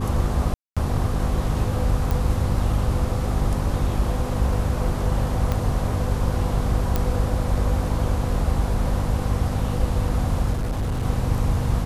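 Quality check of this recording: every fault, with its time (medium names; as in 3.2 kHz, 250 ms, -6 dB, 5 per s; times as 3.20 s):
hum 50 Hz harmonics 5 -26 dBFS
0.54–0.77 s: dropout 226 ms
2.11 s: pop
5.52 s: pop -11 dBFS
6.96 s: pop -8 dBFS
10.52–11.04 s: clipped -21 dBFS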